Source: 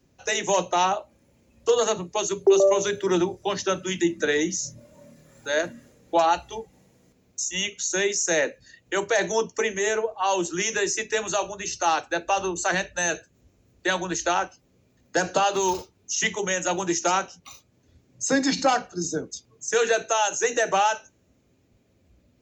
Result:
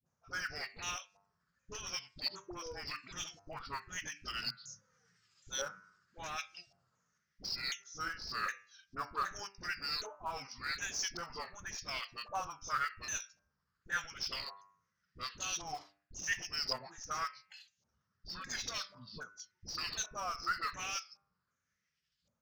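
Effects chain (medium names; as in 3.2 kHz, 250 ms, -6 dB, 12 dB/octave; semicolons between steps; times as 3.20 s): sawtooth pitch modulation -7 st, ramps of 766 ms; FFT filter 170 Hz 0 dB, 310 Hz -20 dB, 510 Hz -15 dB, 830 Hz -17 dB, 1.3 kHz -6 dB, 2.3 kHz -12 dB, 3.9 kHz -8 dB, 6.6 kHz +8 dB, 11 kHz -14 dB; reverse; compression 8:1, threshold -30 dBFS, peak gain reduction 11.5 dB; reverse; de-hum 99.12 Hz, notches 28; LFO band-pass saw up 0.9 Hz 770–3900 Hz; in parallel at -8 dB: Schmitt trigger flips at -44 dBFS; on the sum: phase dispersion highs, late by 60 ms, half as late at 510 Hz; trim +6 dB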